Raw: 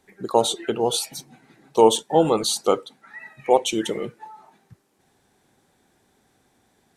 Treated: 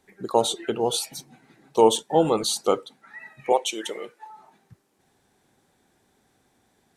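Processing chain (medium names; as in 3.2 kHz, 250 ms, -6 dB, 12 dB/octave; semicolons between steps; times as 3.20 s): 3.52–4.30 s: high-pass 500 Hz 12 dB/octave; trim -2 dB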